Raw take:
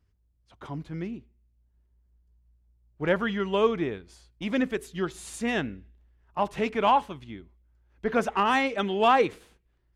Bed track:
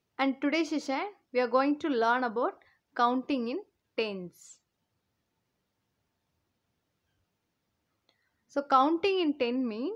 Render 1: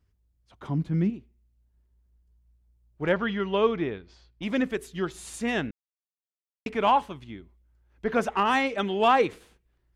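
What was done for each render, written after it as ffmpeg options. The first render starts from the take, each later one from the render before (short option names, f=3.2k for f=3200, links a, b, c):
-filter_complex "[0:a]asettb=1/sr,asplit=3[a][b][c];[a]atrim=end=0.664[d];[b]atrim=start=0.66:end=1.1,asetpts=PTS-STARTPTS,afade=t=in:d=0.004:c=qsin,afade=t=out:st=0.436:d=0.004:c=qsin,equalizer=f=190:w=0.98:g=12[e];[c]atrim=start=1.096[f];[d][e]acrossfade=d=0.004:c1=hsin:c2=qsin[g];[g][f]acrossfade=d=0.004:c1=qsin:c2=hsin,asettb=1/sr,asplit=3[h][i][j];[h]atrim=end=3.124[k];[i]atrim=start=3.12:end=4.43,asetpts=PTS-STARTPTS,afade=t=in:d=0.004:c=qsin,afade=t=out:st=1.306:d=0.004:c=qsin,lowpass=f=5.2k:w=0.5412,lowpass=f=5.2k:w=1.3066[l];[j]atrim=start=4.426[m];[k][l]acrossfade=d=0.004:c1=hsin:c2=qsin[n];[n][m]acrossfade=d=0.004:c1=qsin:c2=hsin,asplit=3[o][p][q];[o]atrim=end=5.71,asetpts=PTS-STARTPTS,afade=t=out:st=5.706:d=0.004:c=hsin[r];[p]atrim=start=5.71:end=6.66,asetpts=PTS-STARTPTS,volume=0[s];[q]atrim=start=6.66,asetpts=PTS-STARTPTS,afade=t=in:d=0.004:c=hsin[t];[r][s][t]concat=n=3:v=0:a=1"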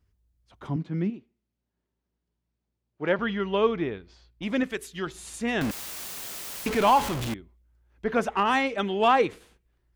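-filter_complex "[0:a]asettb=1/sr,asplit=3[a][b][c];[a]atrim=end=0.764[d];[b]atrim=start=0.76:end=3.19,asetpts=PTS-STARTPTS,afade=t=in:d=0.004:c=qsin,afade=t=out:st=2.426:d=0.004:c=qsin,highpass=190,lowpass=5.5k[e];[c]atrim=start=3.186[f];[d][e]acrossfade=d=0.004:c1=hsin:c2=qsin[g];[g][f]acrossfade=d=0.004:c1=qsin:c2=hsin,asettb=1/sr,asplit=3[h][i][j];[h]atrim=end=4.634[k];[i]atrim=start=4.63:end=5.07,asetpts=PTS-STARTPTS,afade=t=in:d=0.004:c=qsin,afade=t=out:st=0.436:d=0.004:c=qsin,tiltshelf=f=1.2k:g=-4.5[l];[j]atrim=start=5.066[m];[k][l]acrossfade=d=0.004:c1=hsin:c2=qsin[n];[n][m]acrossfade=d=0.004:c1=qsin:c2=hsin,asettb=1/sr,asplit=3[o][p][q];[o]atrim=end=5.614[r];[p]atrim=start=5.61:end=7.34,asetpts=PTS-STARTPTS,afade=t=in:d=0.004:c=qsin,afade=t=out:st=1.726:d=0.004:c=qsin,aeval=exprs='val(0)+0.5*0.0531*sgn(val(0))':c=same[s];[q]atrim=start=7.336[t];[r][s]acrossfade=d=0.004:c1=hsin:c2=qsin[u];[u][t]acrossfade=d=0.004:c1=qsin:c2=hsin"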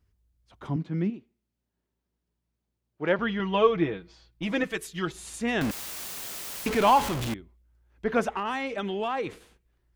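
-filter_complex "[0:a]asettb=1/sr,asplit=3[a][b][c];[a]atrim=end=3.394[d];[b]atrim=start=3.39:end=5.12,asetpts=PTS-STARTPTS,afade=t=in:d=0.004:c=qsin,afade=t=out:st=1.726:d=0.004:c=qsin,aecho=1:1:6.2:0.73,atrim=end_sample=76293[e];[c]atrim=start=5.116[f];[d][e]acrossfade=d=0.004:c1=hsin:c2=qsin[g];[g][f]acrossfade=d=0.004:c1=qsin:c2=hsin,asettb=1/sr,asplit=3[h][i][j];[h]atrim=end=8.354[k];[i]atrim=start=8.35:end=9.27,asetpts=PTS-STARTPTS,afade=t=in:d=0.004:c=qsin,afade=t=out:st=0.916:d=0.004:c=qsin,acompressor=threshold=-27dB:ratio=4:attack=3.2:release=140:knee=1:detection=peak[l];[j]atrim=start=9.266[m];[k][l]acrossfade=d=0.004:c1=hsin:c2=qsin[n];[n][m]acrossfade=d=0.004:c1=qsin:c2=hsin"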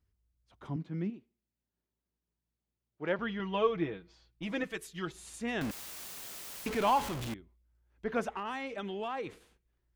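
-af "volume=-7.5dB"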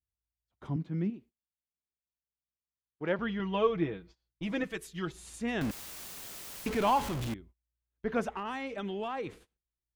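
-af "agate=range=-22dB:threshold=-56dB:ratio=16:detection=peak,lowshelf=f=280:g=5"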